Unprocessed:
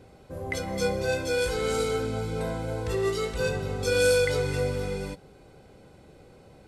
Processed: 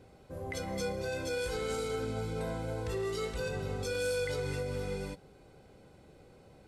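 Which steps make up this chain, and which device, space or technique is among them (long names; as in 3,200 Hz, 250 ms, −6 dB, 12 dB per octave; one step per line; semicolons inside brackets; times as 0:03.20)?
clipper into limiter (hard clipping −15 dBFS, distortion −41 dB; brickwall limiter −21.5 dBFS, peak gain reduction 6.5 dB)
level −5 dB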